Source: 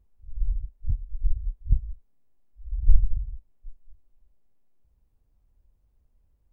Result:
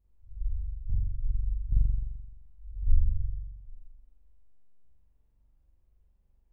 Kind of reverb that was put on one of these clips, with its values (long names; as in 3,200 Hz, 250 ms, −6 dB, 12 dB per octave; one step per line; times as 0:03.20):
spring reverb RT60 1.1 s, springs 43 ms, chirp 70 ms, DRR −7 dB
level −9.5 dB